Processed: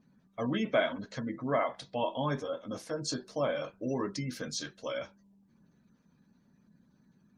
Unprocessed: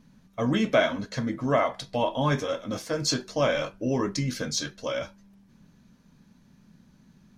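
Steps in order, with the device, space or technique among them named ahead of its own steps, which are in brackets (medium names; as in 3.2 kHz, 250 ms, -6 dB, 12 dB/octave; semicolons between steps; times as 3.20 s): 2.25–3.68 s: dynamic bell 2.4 kHz, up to -5 dB, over -42 dBFS, Q 0.82; noise-suppressed video call (high-pass 150 Hz 6 dB/octave; spectral gate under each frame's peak -30 dB strong; trim -5.5 dB; Opus 32 kbps 48 kHz)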